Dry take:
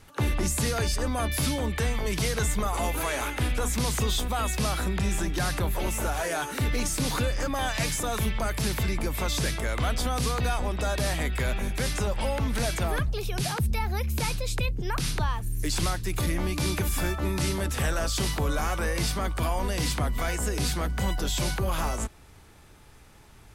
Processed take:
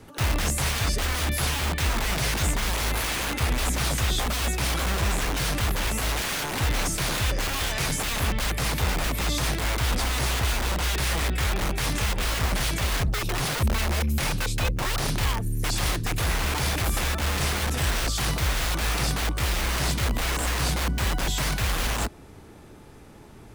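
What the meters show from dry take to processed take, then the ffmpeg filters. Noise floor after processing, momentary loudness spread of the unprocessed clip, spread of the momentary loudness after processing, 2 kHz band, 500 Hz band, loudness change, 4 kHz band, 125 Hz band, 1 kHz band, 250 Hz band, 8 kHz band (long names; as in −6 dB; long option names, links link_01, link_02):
−46 dBFS, 2 LU, 2 LU, +4.5 dB, −2.0 dB, +2.5 dB, +5.0 dB, +2.0 dB, +1.5 dB, −1.0 dB, +3.0 dB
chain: -filter_complex "[0:a]equalizer=frequency=300:width=0.42:gain=11.5,acrossover=split=120|1800[link_01][link_02][link_03];[link_02]aeval=exprs='(mod(16.8*val(0)+1,2)-1)/16.8':channel_layout=same[link_04];[link_01][link_04][link_03]amix=inputs=3:normalize=0"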